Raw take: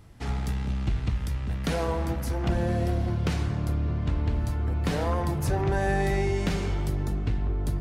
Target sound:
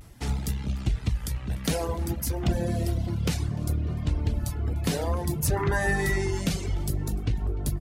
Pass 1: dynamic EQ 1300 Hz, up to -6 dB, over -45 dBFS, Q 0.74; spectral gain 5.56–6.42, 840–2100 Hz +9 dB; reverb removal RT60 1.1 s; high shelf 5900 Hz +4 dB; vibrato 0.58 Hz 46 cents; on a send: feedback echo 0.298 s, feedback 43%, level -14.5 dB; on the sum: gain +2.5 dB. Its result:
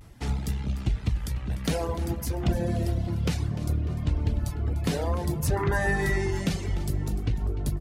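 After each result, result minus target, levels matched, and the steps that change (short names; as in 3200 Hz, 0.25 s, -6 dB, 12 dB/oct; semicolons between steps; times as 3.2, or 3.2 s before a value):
echo-to-direct +9 dB; 8000 Hz band -4.5 dB
change: feedback echo 0.298 s, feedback 43%, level -23.5 dB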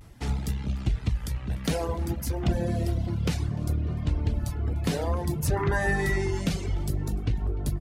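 8000 Hz band -4.5 dB
change: high shelf 5900 Hz +11 dB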